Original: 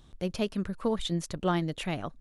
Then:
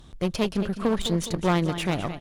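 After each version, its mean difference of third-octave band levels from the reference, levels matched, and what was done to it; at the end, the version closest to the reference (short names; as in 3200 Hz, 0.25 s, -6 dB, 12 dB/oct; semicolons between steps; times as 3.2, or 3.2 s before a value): 5.0 dB: on a send: feedback echo 0.208 s, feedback 49%, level -12.5 dB; on the sum: one-sided clip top -36 dBFS, bottom -19 dBFS; gain +7.5 dB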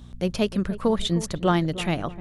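2.0 dB: buzz 60 Hz, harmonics 4, -50 dBFS -5 dB/oct; on a send: darkening echo 0.306 s, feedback 42%, low-pass 1000 Hz, level -13.5 dB; on the sum: gain +6.5 dB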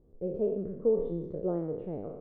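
12.0 dB: spectral trails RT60 0.92 s; synth low-pass 460 Hz, resonance Q 5; gain -9 dB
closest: second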